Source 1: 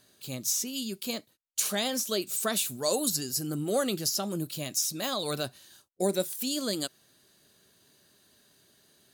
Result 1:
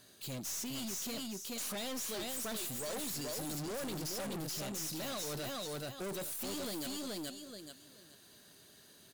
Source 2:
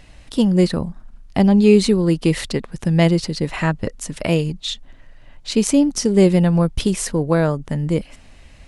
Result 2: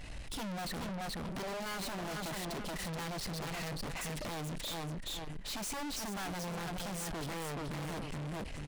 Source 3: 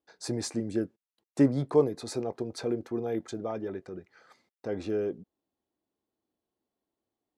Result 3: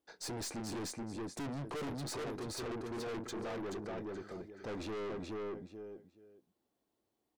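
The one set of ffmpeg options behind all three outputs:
-af "aeval=exprs='0.15*(abs(mod(val(0)/0.15+3,4)-2)-1)':c=same,aecho=1:1:428|856|1284:0.562|0.107|0.0203,aeval=exprs='(tanh(112*val(0)+0.2)-tanh(0.2))/112':c=same,volume=1.33"

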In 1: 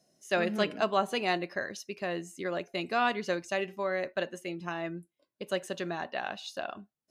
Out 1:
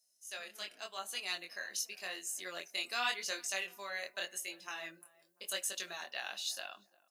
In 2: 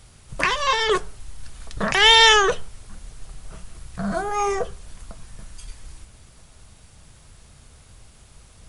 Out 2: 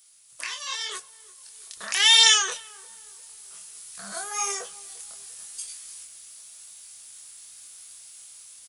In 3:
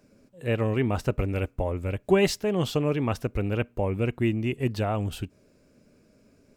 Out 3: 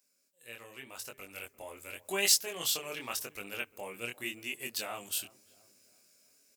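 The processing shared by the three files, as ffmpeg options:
-filter_complex "[0:a]aderivative,asplit=2[s0][s1];[s1]adelay=347,lowpass=f=1000:p=1,volume=0.1,asplit=2[s2][s3];[s3]adelay=347,lowpass=f=1000:p=1,volume=0.52,asplit=2[s4][s5];[s5]adelay=347,lowpass=f=1000:p=1,volume=0.52,asplit=2[s6][s7];[s7]adelay=347,lowpass=f=1000:p=1,volume=0.52[s8];[s2][s4][s6][s8]amix=inputs=4:normalize=0[s9];[s0][s9]amix=inputs=2:normalize=0,dynaudnorm=f=170:g=17:m=3.35,highshelf=f=4700:g=4.5,bandreject=f=50:t=h:w=6,bandreject=f=100:t=h:w=6,bandreject=f=150:t=h:w=6,flanger=delay=20:depth=5.7:speed=0.88"

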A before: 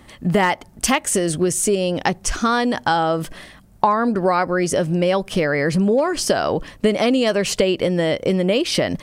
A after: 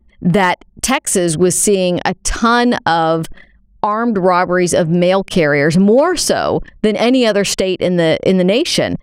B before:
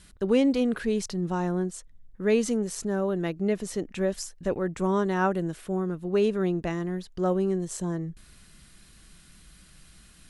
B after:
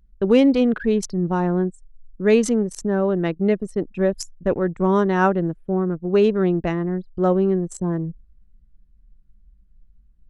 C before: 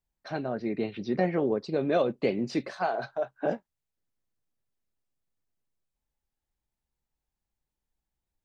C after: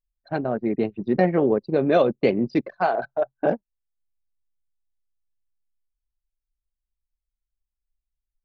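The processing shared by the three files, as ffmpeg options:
-af "alimiter=limit=0.376:level=0:latency=1:release=476,anlmdn=10,volume=2.24"

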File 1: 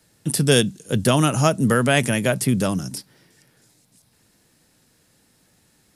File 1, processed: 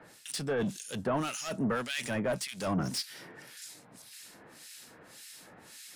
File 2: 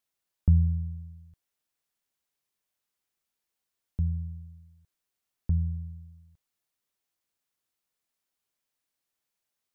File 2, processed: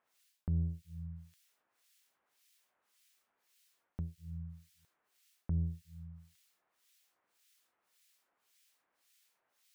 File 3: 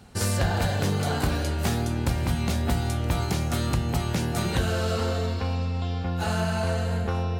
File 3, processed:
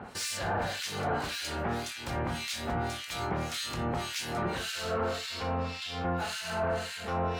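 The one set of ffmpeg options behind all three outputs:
-filter_complex "[0:a]acrossover=split=8000[s0][s1];[s1]acompressor=threshold=0.00398:ratio=4:attack=1:release=60[s2];[s0][s2]amix=inputs=2:normalize=0,highshelf=f=7300:g=7,areverse,acompressor=threshold=0.0355:ratio=10,areverse,asplit=2[s3][s4];[s4]highpass=f=720:p=1,volume=14.1,asoftclip=type=tanh:threshold=0.1[s5];[s3][s5]amix=inputs=2:normalize=0,lowpass=f=3900:p=1,volume=0.501,acrossover=split=1800[s6][s7];[s6]aeval=exprs='val(0)*(1-1/2+1/2*cos(2*PI*1.8*n/s))':c=same[s8];[s7]aeval=exprs='val(0)*(1-1/2-1/2*cos(2*PI*1.8*n/s))':c=same[s9];[s8][s9]amix=inputs=2:normalize=0"

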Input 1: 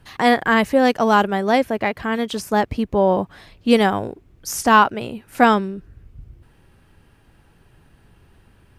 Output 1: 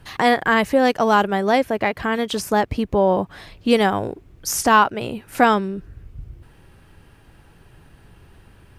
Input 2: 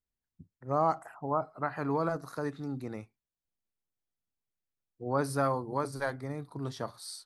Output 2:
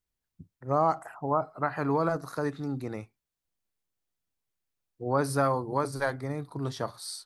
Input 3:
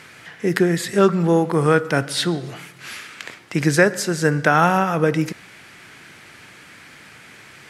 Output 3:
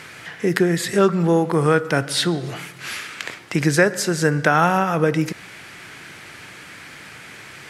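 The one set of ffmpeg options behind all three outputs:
-filter_complex "[0:a]equalizer=f=230:t=o:w=0.31:g=-3,asplit=2[s0][s1];[s1]acompressor=threshold=0.0562:ratio=6,volume=1.33[s2];[s0][s2]amix=inputs=2:normalize=0,volume=0.708"

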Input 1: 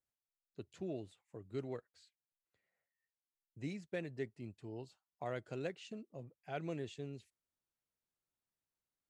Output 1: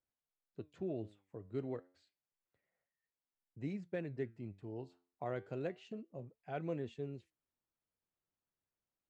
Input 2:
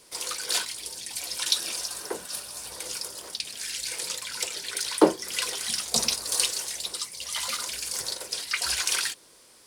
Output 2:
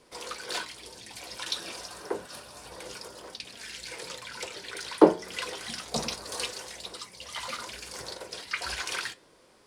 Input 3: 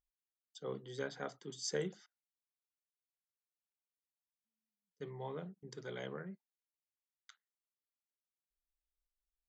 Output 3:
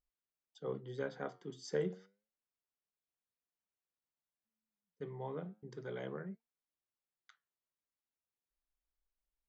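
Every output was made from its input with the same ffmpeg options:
-af "lowpass=f=1400:p=1,flanger=delay=3.9:depth=7.5:regen=84:speed=0.3:shape=sinusoidal,volume=2.11"

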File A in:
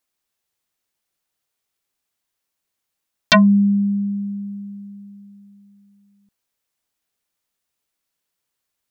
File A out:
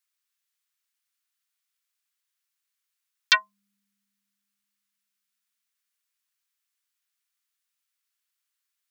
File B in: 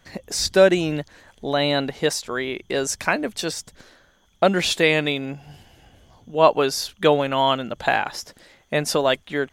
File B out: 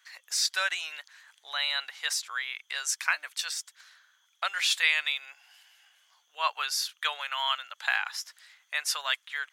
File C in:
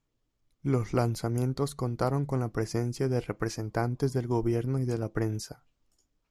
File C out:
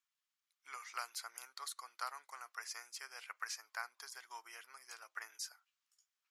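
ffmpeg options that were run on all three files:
-af "highpass=f=1200:w=0.5412,highpass=f=1200:w=1.3066,volume=0.708"

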